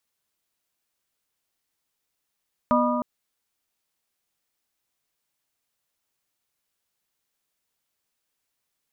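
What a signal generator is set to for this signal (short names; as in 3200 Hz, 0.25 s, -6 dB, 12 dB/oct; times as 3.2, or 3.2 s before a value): metal hit plate, length 0.31 s, lowest mode 244 Hz, modes 4, decay 2.78 s, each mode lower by 0.5 dB, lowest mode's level -20.5 dB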